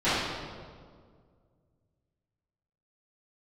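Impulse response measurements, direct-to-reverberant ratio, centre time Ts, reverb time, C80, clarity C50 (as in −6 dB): −17.5 dB, 112 ms, 1.9 s, 0.5 dB, −3.0 dB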